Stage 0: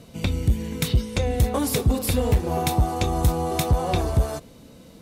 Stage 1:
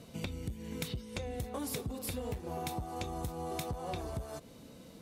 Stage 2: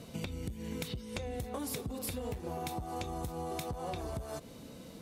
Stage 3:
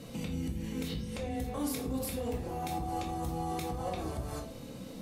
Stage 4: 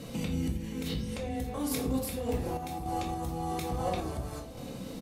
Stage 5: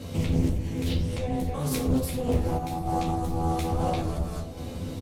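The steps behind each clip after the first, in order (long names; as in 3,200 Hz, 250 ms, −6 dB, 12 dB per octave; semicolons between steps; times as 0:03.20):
downward compressor 5 to 1, threshold −30 dBFS, peak gain reduction 14 dB; low-shelf EQ 72 Hz −7 dB; level −5 dB
downward compressor, threshold −38 dBFS, peak gain reduction 6 dB; level +3.5 dB
brickwall limiter −29.5 dBFS, peak gain reduction 7.5 dB; rectangular room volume 450 cubic metres, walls furnished, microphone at 2.2 metres
sample-and-hold tremolo 3.5 Hz; single-tap delay 742 ms −21 dB; level +4.5 dB
sub-octave generator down 1 octave, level +3 dB; double-tracking delay 12 ms −2 dB; highs frequency-modulated by the lows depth 0.42 ms; level +1 dB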